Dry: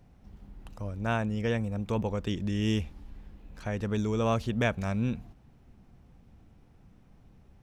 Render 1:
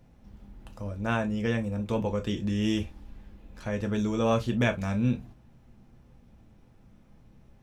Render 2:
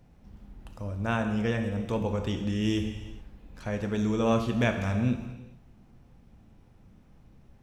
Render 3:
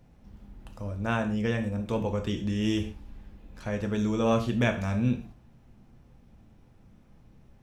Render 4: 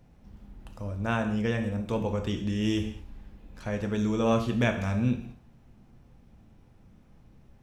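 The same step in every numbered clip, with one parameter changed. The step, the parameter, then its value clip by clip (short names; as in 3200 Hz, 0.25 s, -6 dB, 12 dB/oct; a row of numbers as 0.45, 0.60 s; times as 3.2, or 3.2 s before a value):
non-linear reverb, gate: 80, 460, 170, 260 ms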